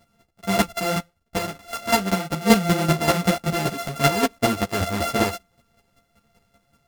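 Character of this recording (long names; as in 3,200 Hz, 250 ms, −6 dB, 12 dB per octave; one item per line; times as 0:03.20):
a buzz of ramps at a fixed pitch in blocks of 64 samples
chopped level 5.2 Hz, depth 65%, duty 15%
a shimmering, thickened sound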